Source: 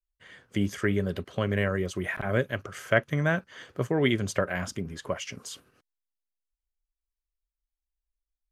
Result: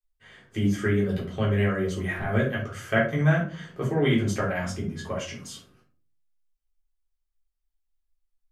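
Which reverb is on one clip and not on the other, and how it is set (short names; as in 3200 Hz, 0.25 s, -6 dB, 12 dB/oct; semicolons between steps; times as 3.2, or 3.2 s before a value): shoebox room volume 270 m³, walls furnished, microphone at 3.7 m; gain -6 dB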